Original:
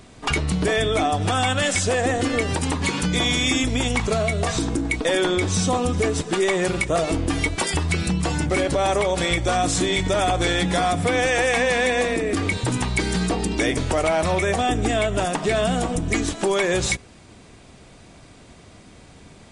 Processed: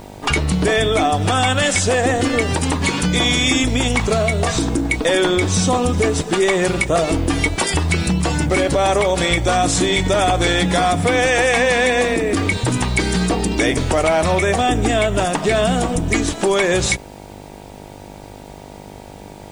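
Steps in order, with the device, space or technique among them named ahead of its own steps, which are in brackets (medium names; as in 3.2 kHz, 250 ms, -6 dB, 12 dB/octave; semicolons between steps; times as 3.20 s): video cassette with head-switching buzz (mains buzz 50 Hz, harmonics 19, -43 dBFS -1 dB/octave; white noise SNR 38 dB); trim +4.5 dB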